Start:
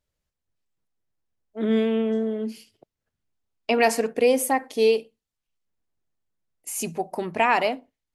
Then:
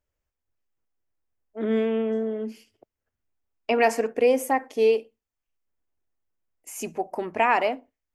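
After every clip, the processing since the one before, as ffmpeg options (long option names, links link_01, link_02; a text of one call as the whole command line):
ffmpeg -i in.wav -af "equalizer=frequency=160:width_type=o:width=0.67:gain=-10,equalizer=frequency=4000:width_type=o:width=0.67:gain=-10,equalizer=frequency=10000:width_type=o:width=0.67:gain=-10" out.wav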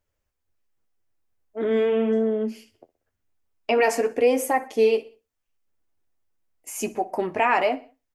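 ffmpeg -i in.wav -filter_complex "[0:a]asplit=2[link_01][link_02];[link_02]alimiter=limit=-19dB:level=0:latency=1,volume=-0.5dB[link_03];[link_01][link_03]amix=inputs=2:normalize=0,flanger=delay=9:depth=2.6:regen=-39:speed=0.86:shape=sinusoidal,aecho=1:1:62|124|186:0.0944|0.0444|0.0209,volume=2dB" out.wav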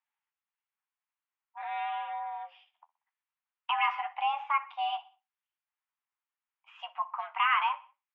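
ffmpeg -i in.wav -af "highpass=frequency=560:width_type=q:width=0.5412,highpass=frequency=560:width_type=q:width=1.307,lowpass=frequency=3000:width_type=q:width=0.5176,lowpass=frequency=3000:width_type=q:width=0.7071,lowpass=frequency=3000:width_type=q:width=1.932,afreqshift=310,volume=-5dB" out.wav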